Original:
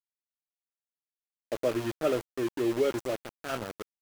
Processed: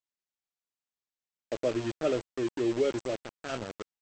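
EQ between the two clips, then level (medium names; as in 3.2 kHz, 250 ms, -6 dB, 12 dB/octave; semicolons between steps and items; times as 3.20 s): dynamic bell 1.2 kHz, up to -4 dB, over -41 dBFS, Q 1; brick-wall FIR low-pass 8.2 kHz; 0.0 dB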